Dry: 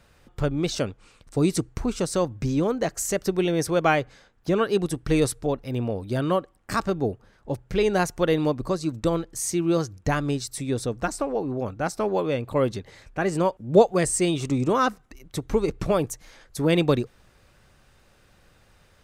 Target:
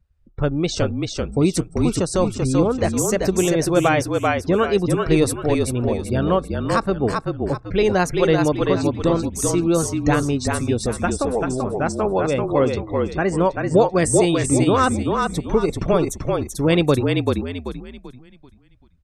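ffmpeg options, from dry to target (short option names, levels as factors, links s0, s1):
-filter_complex "[0:a]afftdn=nr=30:nf=-43,asplit=6[s0][s1][s2][s3][s4][s5];[s1]adelay=387,afreqshift=-39,volume=0.668[s6];[s2]adelay=774,afreqshift=-78,volume=0.234[s7];[s3]adelay=1161,afreqshift=-117,volume=0.0822[s8];[s4]adelay=1548,afreqshift=-156,volume=0.0285[s9];[s5]adelay=1935,afreqshift=-195,volume=0.01[s10];[s0][s6][s7][s8][s9][s10]amix=inputs=6:normalize=0,alimiter=level_in=2.66:limit=0.891:release=50:level=0:latency=1,volume=0.596"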